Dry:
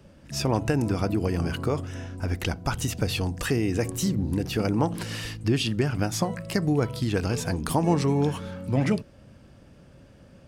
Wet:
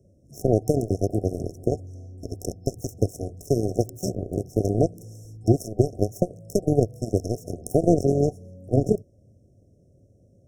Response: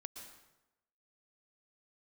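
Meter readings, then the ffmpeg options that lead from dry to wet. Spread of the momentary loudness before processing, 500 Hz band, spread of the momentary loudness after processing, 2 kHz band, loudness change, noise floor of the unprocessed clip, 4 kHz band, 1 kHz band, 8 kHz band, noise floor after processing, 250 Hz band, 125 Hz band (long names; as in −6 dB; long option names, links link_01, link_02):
6 LU, +5.0 dB, 11 LU, below −40 dB, +1.5 dB, −52 dBFS, −13.5 dB, −3.5 dB, −4.0 dB, −58 dBFS, 0.0 dB, 0.0 dB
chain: -af "aeval=exprs='0.376*(cos(1*acos(clip(val(0)/0.376,-1,1)))-cos(1*PI/2))+0.0668*(cos(7*acos(clip(val(0)/0.376,-1,1)))-cos(7*PI/2))':channel_layout=same,equalizer=frequency=100:width_type=o:width=0.67:gain=10,equalizer=frequency=400:width_type=o:width=0.67:gain=7,equalizer=frequency=4000:width_type=o:width=0.67:gain=5,afftfilt=real='re*(1-between(b*sr/4096,750,5300))':imag='im*(1-between(b*sr/4096,750,5300))':win_size=4096:overlap=0.75,volume=2dB"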